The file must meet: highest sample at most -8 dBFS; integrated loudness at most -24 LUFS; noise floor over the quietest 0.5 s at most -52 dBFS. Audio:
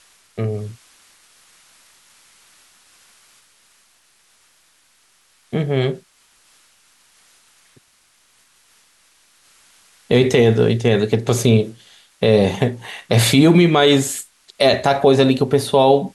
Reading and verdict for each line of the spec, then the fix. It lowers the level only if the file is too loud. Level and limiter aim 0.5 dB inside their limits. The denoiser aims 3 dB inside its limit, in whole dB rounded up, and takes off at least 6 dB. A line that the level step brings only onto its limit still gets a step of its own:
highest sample -3.0 dBFS: fail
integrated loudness -16.5 LUFS: fail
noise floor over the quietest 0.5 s -58 dBFS: OK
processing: gain -8 dB

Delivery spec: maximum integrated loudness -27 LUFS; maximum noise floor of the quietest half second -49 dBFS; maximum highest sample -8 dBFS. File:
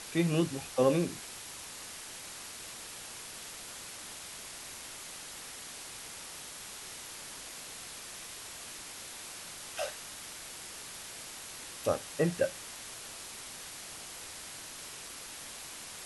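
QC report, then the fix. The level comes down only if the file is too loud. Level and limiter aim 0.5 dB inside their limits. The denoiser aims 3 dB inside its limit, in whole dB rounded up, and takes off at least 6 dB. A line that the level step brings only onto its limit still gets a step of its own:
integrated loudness -38.0 LUFS: OK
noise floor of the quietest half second -45 dBFS: fail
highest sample -14.0 dBFS: OK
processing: denoiser 7 dB, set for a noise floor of -45 dBFS

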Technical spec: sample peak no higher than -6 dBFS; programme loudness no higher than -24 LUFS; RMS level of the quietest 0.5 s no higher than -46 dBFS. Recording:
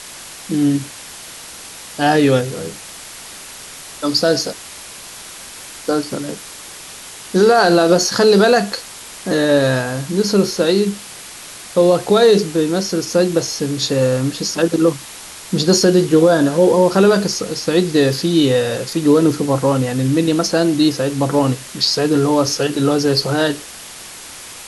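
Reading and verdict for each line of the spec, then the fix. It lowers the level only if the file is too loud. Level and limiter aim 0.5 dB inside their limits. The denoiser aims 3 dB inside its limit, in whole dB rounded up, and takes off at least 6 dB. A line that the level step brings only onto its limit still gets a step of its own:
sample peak -3.0 dBFS: fail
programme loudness -15.5 LUFS: fail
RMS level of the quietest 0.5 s -35 dBFS: fail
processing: denoiser 6 dB, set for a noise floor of -35 dBFS; gain -9 dB

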